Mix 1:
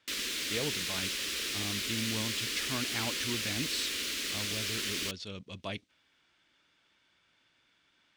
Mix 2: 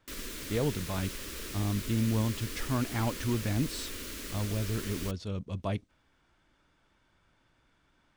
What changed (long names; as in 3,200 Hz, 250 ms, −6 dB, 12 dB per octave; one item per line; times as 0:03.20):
speech +5.0 dB
master: remove meter weighting curve D